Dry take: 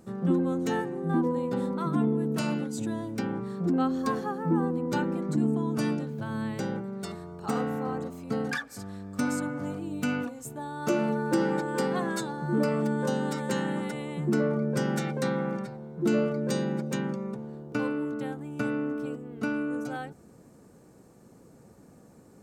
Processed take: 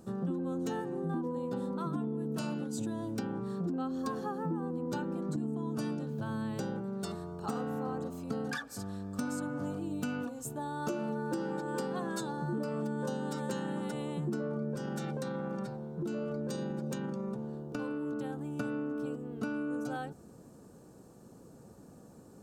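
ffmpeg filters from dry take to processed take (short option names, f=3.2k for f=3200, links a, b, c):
-filter_complex "[0:a]asettb=1/sr,asplit=3[a][b][c];[a]atrim=end=14.754[d];[b]atrim=start=14.75:end=18.49,asetpts=PTS-STARTPTS,afade=t=in:d=0.004:c=qsin,afade=t=out:st=3.736:d=0.004:c=qsin,acompressor=threshold=-30dB:ratio=6:attack=3.2:release=140:knee=1:detection=peak[e];[c]atrim=start=18.486[f];[d][e]acrossfade=d=0.004:c1=hsin:c2=qsin[g];[g][f]acrossfade=d=0.004:c1=qsin:c2=hsin,equalizer=f=2.1k:w=3.6:g=-10.5,acompressor=threshold=-32dB:ratio=6"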